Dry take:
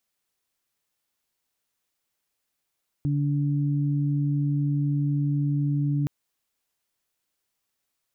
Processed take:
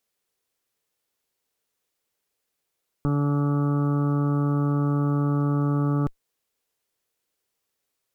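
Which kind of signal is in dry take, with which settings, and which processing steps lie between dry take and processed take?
steady additive tone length 3.02 s, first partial 144 Hz, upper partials -7 dB, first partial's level -22 dB
Chebyshev shaper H 2 -10 dB, 6 -12 dB, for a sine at -20 dBFS; peaking EQ 450 Hz +7.5 dB 0.63 oct

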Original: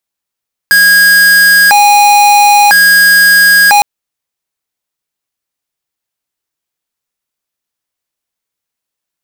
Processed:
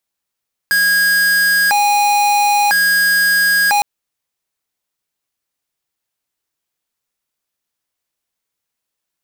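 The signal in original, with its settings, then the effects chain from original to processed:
siren hi-lo 822–1640 Hz 0.5 per s square -5 dBFS 3.11 s
peak limiter -13 dBFS

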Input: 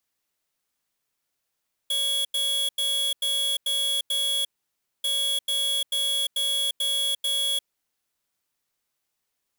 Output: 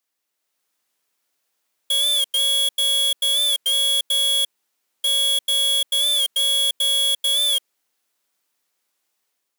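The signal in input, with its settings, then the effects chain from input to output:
beep pattern square 3.35 kHz, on 0.35 s, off 0.09 s, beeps 6, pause 0.59 s, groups 2, -25 dBFS
high-pass 240 Hz 12 dB/octave; level rider gain up to 6 dB; warped record 45 rpm, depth 100 cents

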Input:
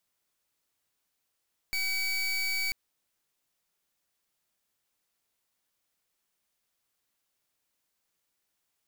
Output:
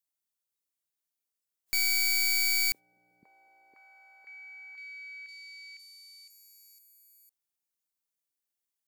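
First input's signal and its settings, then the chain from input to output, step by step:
pulse 2.28 kHz, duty 28% -30 dBFS 0.99 s
spectral noise reduction 16 dB; treble shelf 5.3 kHz +10 dB; repeats whose band climbs or falls 508 ms, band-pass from 240 Hz, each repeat 0.7 oct, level -3.5 dB

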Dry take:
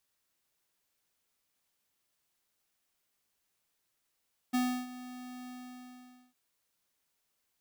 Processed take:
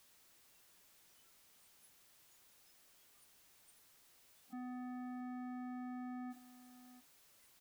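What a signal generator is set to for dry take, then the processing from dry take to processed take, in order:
ADSR square 250 Hz, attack 17 ms, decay 317 ms, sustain -17 dB, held 0.95 s, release 857 ms -28 dBFS
one-bit comparator; spectral noise reduction 22 dB; delay 677 ms -15 dB

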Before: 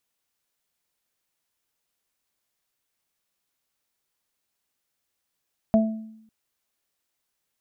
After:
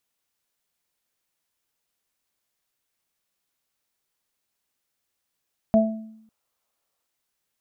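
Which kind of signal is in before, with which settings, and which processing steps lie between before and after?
additive tone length 0.55 s, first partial 220 Hz, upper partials -19/-1.5 dB, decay 0.80 s, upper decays 0.33/0.39 s, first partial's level -14.5 dB
time-frequency box 5.76–7.06 s, 450–1400 Hz +6 dB

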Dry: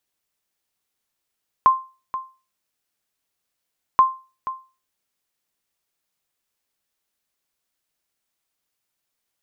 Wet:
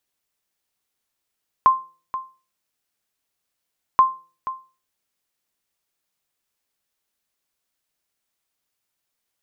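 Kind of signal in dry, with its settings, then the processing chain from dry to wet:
sonar ping 1.05 kHz, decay 0.32 s, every 2.33 s, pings 2, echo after 0.48 s, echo -14 dB -6 dBFS
de-hum 166.8 Hz, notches 3

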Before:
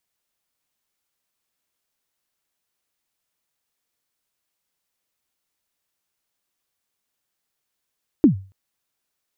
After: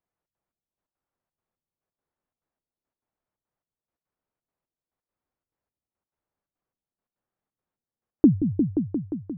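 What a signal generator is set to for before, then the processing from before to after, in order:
kick drum length 0.28 s, from 340 Hz, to 96 Hz, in 112 ms, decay 0.35 s, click off, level -5.5 dB
low-pass 1.1 kHz 12 dB/octave; trance gate "xxx.xx...x.x" 174 bpm; delay with an opening low-pass 176 ms, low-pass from 200 Hz, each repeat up 1 oct, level -3 dB

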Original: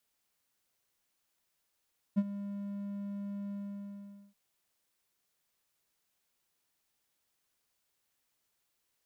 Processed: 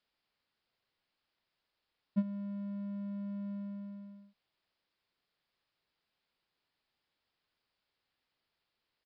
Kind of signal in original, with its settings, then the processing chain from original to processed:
ADSR triangle 201 Hz, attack 23 ms, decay 46 ms, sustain -14.5 dB, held 1.36 s, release 819 ms -20 dBFS
resampled via 11.025 kHz

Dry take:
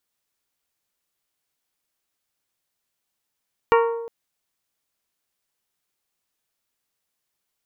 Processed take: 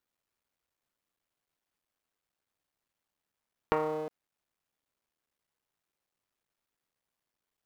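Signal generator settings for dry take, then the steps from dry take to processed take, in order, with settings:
glass hit bell, length 0.36 s, lowest mode 463 Hz, modes 7, decay 1.09 s, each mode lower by 3 dB, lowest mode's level -13 dB
cycle switcher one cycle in 3, muted; treble shelf 3 kHz -10 dB; compression 3:1, threshold -28 dBFS

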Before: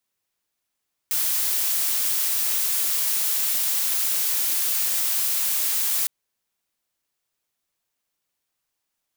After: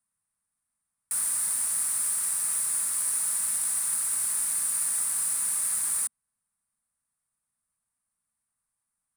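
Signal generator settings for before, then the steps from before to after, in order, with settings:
noise blue, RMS -23 dBFS 4.96 s
FFT filter 230 Hz 0 dB, 350 Hz -17 dB, 1.2 kHz -2 dB, 2 kHz -8 dB, 3.1 kHz -18 dB, 4.4 kHz -14 dB, 6.6 kHz -12 dB, 9.4 kHz +8 dB, 14 kHz -19 dB

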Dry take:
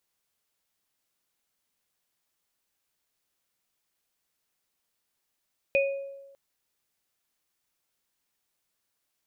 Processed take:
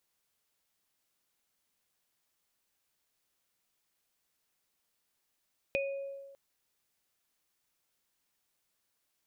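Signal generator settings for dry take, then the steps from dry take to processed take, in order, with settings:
sine partials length 0.60 s, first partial 552 Hz, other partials 2.48 kHz, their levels -1.5 dB, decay 1.12 s, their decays 0.44 s, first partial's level -20 dB
compression 2.5:1, threshold -35 dBFS

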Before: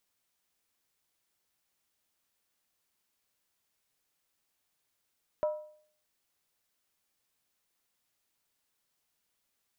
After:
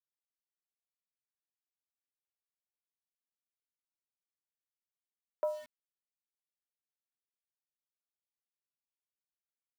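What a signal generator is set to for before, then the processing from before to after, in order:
skin hit, lowest mode 609 Hz, decay 0.56 s, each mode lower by 11 dB, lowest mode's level -24 dB
high-pass 420 Hz 24 dB/octave; treble shelf 2.3 kHz -10.5 dB; small samples zeroed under -49 dBFS

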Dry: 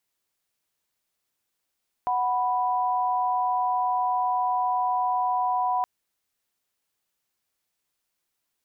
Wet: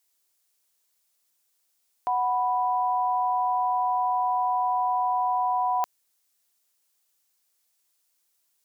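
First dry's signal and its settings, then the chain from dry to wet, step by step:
chord F#5/B5 sine, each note -24.5 dBFS 3.77 s
tone controls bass -8 dB, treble +9 dB

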